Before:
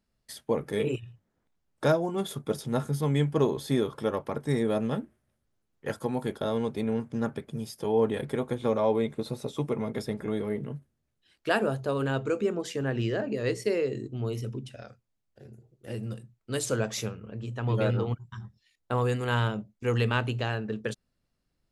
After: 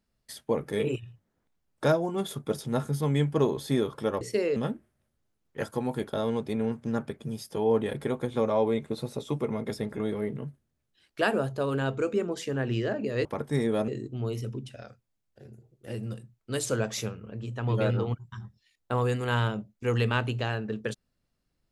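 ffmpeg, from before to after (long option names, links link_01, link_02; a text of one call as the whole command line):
ffmpeg -i in.wav -filter_complex "[0:a]asplit=5[link_01][link_02][link_03][link_04][link_05];[link_01]atrim=end=4.212[link_06];[link_02]atrim=start=13.528:end=13.882[link_07];[link_03]atrim=start=4.838:end=13.532[link_08];[link_04]atrim=start=4.208:end=4.842[link_09];[link_05]atrim=start=13.878[link_10];[link_06][link_07]acrossfade=duration=0.004:curve1=hsin:curve2=hsin[link_11];[link_11][link_08]acrossfade=duration=0.004:curve1=hsin:curve2=hsin[link_12];[link_12][link_09]acrossfade=duration=0.004:curve1=hsin:curve2=hsin[link_13];[link_13][link_10]acrossfade=duration=0.004:curve1=hsin:curve2=hsin" out.wav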